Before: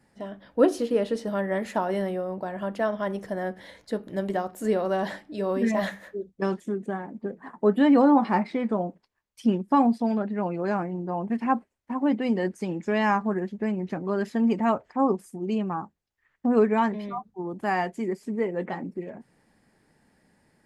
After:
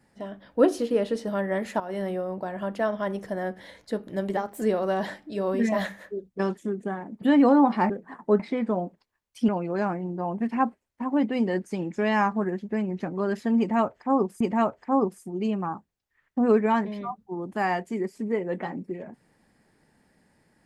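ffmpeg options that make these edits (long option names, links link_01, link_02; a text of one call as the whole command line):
ffmpeg -i in.wav -filter_complex "[0:a]asplit=9[link_01][link_02][link_03][link_04][link_05][link_06][link_07][link_08][link_09];[link_01]atrim=end=1.8,asetpts=PTS-STARTPTS,afade=type=out:start_time=1.796:duration=0.004:curve=hsin:silence=0.237137[link_10];[link_02]atrim=start=1.8:end=4.374,asetpts=PTS-STARTPTS,afade=type=in:duration=0.31:silence=0.237137[link_11];[link_03]atrim=start=4.37:end=4.64,asetpts=PTS-STARTPTS,asetrate=48510,aresample=44100[link_12];[link_04]atrim=start=4.636:end=7.242[link_13];[link_05]atrim=start=7.738:end=8.422[link_14];[link_06]atrim=start=7.238:end=7.742[link_15];[link_07]atrim=start=8.418:end=9.512[link_16];[link_08]atrim=start=10.378:end=15.302[link_17];[link_09]atrim=start=14.478[link_18];[link_10][link_11]concat=n=2:v=0:a=1[link_19];[link_19][link_12]acrossfade=duration=0.004:curve1=hsin:curve2=hsin[link_20];[link_20][link_13]acrossfade=duration=0.004:curve1=hsin:curve2=hsin[link_21];[link_21][link_14]acrossfade=duration=0.004:curve1=hsin:curve2=hsin[link_22];[link_22][link_15]acrossfade=duration=0.004:curve1=hsin:curve2=hsin[link_23];[link_23][link_16]acrossfade=duration=0.004:curve1=hsin:curve2=hsin[link_24];[link_24][link_17]acrossfade=duration=0.004:curve1=hsin:curve2=hsin[link_25];[link_25][link_18]acrossfade=duration=0.004:curve1=hsin:curve2=hsin" out.wav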